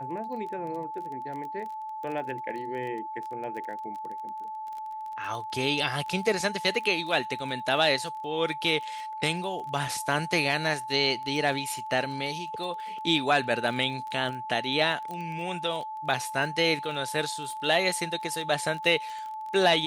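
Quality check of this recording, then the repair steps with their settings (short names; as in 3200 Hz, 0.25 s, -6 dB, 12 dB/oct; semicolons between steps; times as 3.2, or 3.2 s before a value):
crackle 21/s -35 dBFS
tone 870 Hz -34 dBFS
15.11 pop -24 dBFS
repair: de-click; notch 870 Hz, Q 30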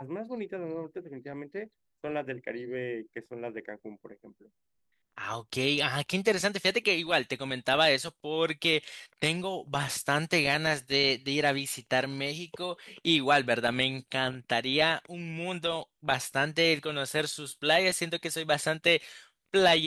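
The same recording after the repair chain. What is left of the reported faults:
none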